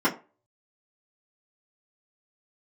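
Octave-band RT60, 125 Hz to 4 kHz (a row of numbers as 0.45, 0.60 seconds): 0.30, 0.25, 0.35, 0.30, 0.25, 0.20 seconds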